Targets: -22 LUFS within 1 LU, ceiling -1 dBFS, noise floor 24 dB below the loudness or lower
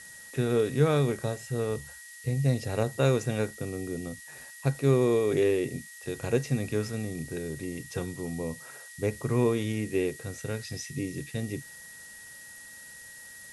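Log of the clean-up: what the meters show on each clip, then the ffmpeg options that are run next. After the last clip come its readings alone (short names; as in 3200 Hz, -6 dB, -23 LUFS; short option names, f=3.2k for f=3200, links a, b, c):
steady tone 1900 Hz; tone level -47 dBFS; noise floor -47 dBFS; noise floor target -54 dBFS; loudness -29.5 LUFS; peak -11.0 dBFS; loudness target -22.0 LUFS
-> -af "bandreject=f=1.9k:w=30"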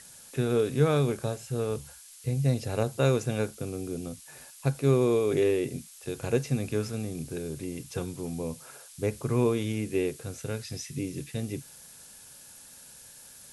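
steady tone none; noise floor -50 dBFS; noise floor target -54 dBFS
-> -af "afftdn=nr=6:nf=-50"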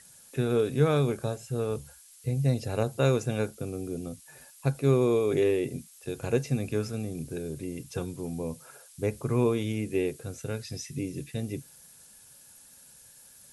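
noise floor -54 dBFS; loudness -30.0 LUFS; peak -11.5 dBFS; loudness target -22.0 LUFS
-> -af "volume=8dB"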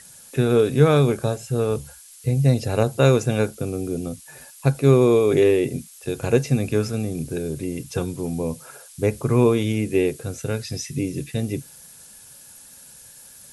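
loudness -22.0 LUFS; peak -3.5 dBFS; noise floor -46 dBFS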